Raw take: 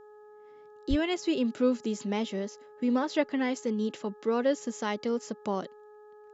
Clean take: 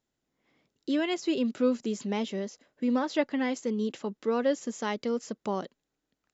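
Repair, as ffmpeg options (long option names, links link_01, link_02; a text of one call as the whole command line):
ffmpeg -i in.wav -filter_complex "[0:a]bandreject=frequency=421.4:width_type=h:width=4,bandreject=frequency=842.8:width_type=h:width=4,bandreject=frequency=1264.2:width_type=h:width=4,bandreject=frequency=1685.6:width_type=h:width=4,asplit=3[link_01][link_02][link_03];[link_01]afade=type=out:start_time=0.89:duration=0.02[link_04];[link_02]highpass=frequency=140:width=0.5412,highpass=frequency=140:width=1.3066,afade=type=in:start_time=0.89:duration=0.02,afade=type=out:start_time=1.01:duration=0.02[link_05];[link_03]afade=type=in:start_time=1.01:duration=0.02[link_06];[link_04][link_05][link_06]amix=inputs=3:normalize=0" out.wav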